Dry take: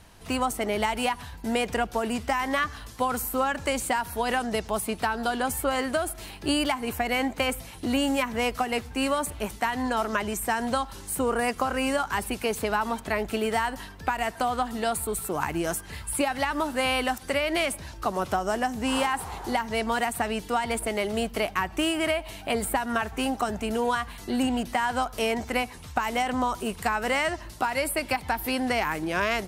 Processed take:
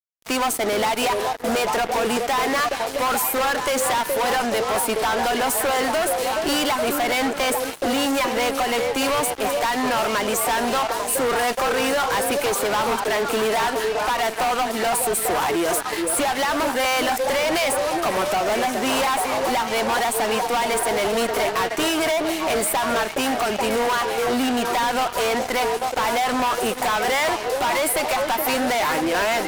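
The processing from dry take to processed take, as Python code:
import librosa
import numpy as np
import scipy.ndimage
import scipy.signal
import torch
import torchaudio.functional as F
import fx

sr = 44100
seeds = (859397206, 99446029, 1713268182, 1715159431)

y = scipy.signal.sosfilt(scipy.signal.butter(2, 320.0, 'highpass', fs=sr, output='sos'), x)
y = fx.echo_stepped(y, sr, ms=422, hz=440.0, octaves=0.7, feedback_pct=70, wet_db=-4.5)
y = fx.fuzz(y, sr, gain_db=34.0, gate_db=-42.0)
y = F.gain(torch.from_numpy(y), -5.5).numpy()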